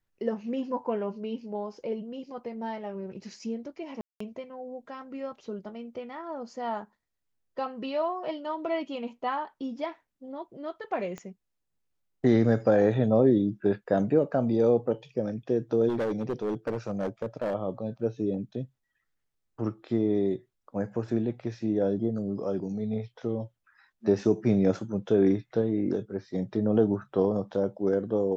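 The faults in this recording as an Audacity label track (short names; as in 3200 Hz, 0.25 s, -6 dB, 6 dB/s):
4.010000	4.200000	gap 0.194 s
11.180000	11.180000	pop -26 dBFS
15.880000	17.550000	clipped -25 dBFS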